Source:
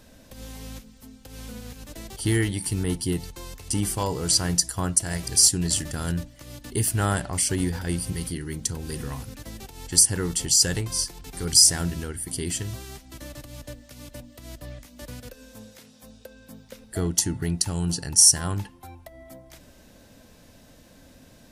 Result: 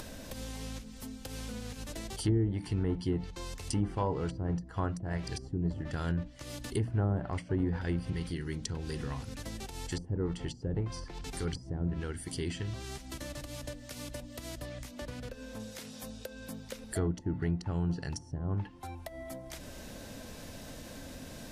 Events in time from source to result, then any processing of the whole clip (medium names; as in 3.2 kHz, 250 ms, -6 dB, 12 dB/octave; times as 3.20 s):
14.91–15.60 s: treble shelf 5.4 kHz -12 dB
whole clip: hum notches 60/120/180/240/300 Hz; low-pass that closes with the level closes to 460 Hz, closed at -18.5 dBFS; upward compressor, threshold -30 dBFS; trim -4 dB